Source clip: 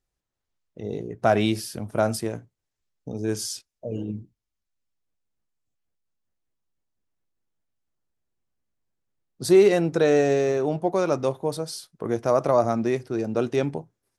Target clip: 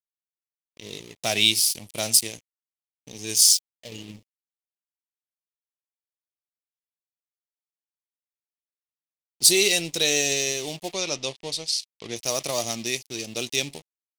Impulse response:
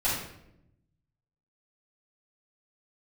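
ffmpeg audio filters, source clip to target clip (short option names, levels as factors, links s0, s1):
-filter_complex "[0:a]aeval=exprs='sgn(val(0))*max(abs(val(0))-0.00841,0)':c=same,aexciter=amount=15:drive=6.4:freq=2300,asplit=3[s0][s1][s2];[s0]afade=t=out:st=10.92:d=0.02[s3];[s1]lowpass=5300,afade=t=in:st=10.92:d=0.02,afade=t=out:st=12.15:d=0.02[s4];[s2]afade=t=in:st=12.15:d=0.02[s5];[s3][s4][s5]amix=inputs=3:normalize=0,volume=0.355"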